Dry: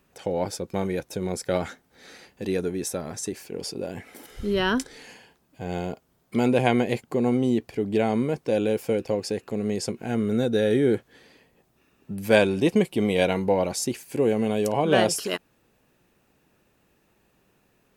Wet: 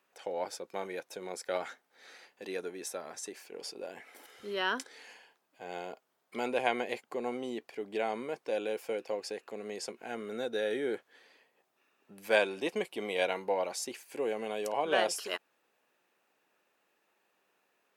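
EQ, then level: Bessel high-pass 700 Hz, order 2; treble shelf 4.2 kHz -7 dB; -3.5 dB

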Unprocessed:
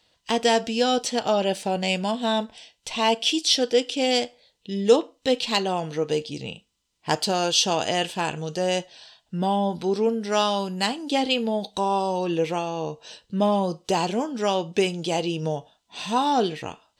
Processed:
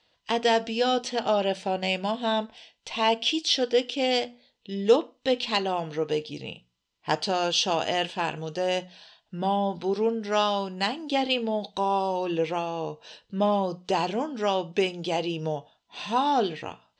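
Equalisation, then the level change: distance through air 120 m; bass shelf 410 Hz -4.5 dB; hum notches 60/120/180/240 Hz; 0.0 dB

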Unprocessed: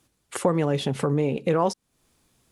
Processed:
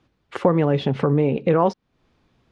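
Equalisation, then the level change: distance through air 250 m; +5.0 dB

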